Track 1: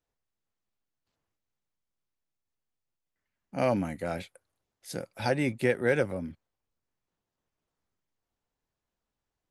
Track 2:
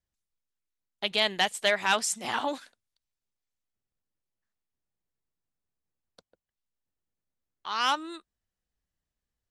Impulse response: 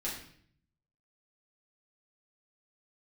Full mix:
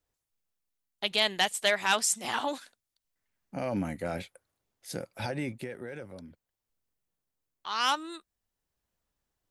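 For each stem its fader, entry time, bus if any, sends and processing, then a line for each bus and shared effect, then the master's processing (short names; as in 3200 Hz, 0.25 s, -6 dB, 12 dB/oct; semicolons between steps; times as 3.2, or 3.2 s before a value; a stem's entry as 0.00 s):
+0.5 dB, 0.00 s, no send, limiter -23 dBFS, peak gain reduction 11 dB; auto duck -12 dB, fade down 0.95 s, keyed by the second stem
-1.5 dB, 0.00 s, no send, high shelf 7400 Hz +8 dB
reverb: off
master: dry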